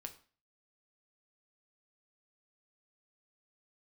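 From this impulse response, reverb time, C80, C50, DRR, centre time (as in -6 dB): 0.40 s, 18.0 dB, 14.0 dB, 5.5 dB, 7 ms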